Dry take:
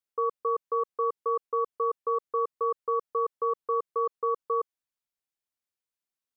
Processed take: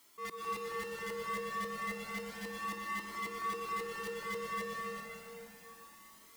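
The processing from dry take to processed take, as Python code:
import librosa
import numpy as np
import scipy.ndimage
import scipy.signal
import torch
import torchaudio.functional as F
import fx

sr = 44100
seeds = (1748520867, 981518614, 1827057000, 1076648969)

p1 = scipy.signal.sosfilt(scipy.signal.ellip(4, 1.0, 40, 180.0, 'highpass', fs=sr, output='sos'), x)
p2 = fx.auto_swell(p1, sr, attack_ms=570.0)
p3 = fx.power_curve(p2, sr, exponent=0.5)
p4 = fx.quant_dither(p3, sr, seeds[0], bits=6, dither='none')
p5 = p3 + F.gain(torch.from_numpy(p4), -5.5).numpy()
p6 = 10.0 ** (-36.5 / 20.0) * (np.abs((p5 / 10.0 ** (-36.5 / 20.0) + 3.0) % 4.0 - 2.0) - 1.0)
p7 = p6 + 10.0 ** (-8.5 / 20.0) * np.pad(p6, (int(387 * sr / 1000.0), 0))[:len(p6)]
p8 = fx.rev_plate(p7, sr, seeds[1], rt60_s=4.1, hf_ratio=0.6, predelay_ms=115, drr_db=-3.0)
p9 = fx.comb_cascade(p8, sr, direction='rising', hz=0.32)
y = F.gain(torch.from_numpy(p9), 5.0).numpy()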